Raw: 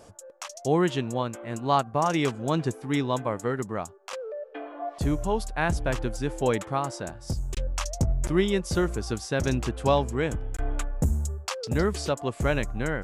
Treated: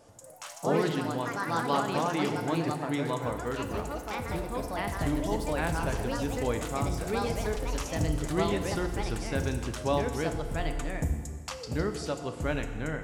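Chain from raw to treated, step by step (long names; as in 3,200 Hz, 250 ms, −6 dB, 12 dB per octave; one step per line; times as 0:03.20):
delay with pitch and tempo change per echo 84 ms, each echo +3 semitones, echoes 3
feedback delay network reverb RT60 1.6 s, low-frequency decay 1.05×, high-frequency decay 0.9×, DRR 6 dB
level −6.5 dB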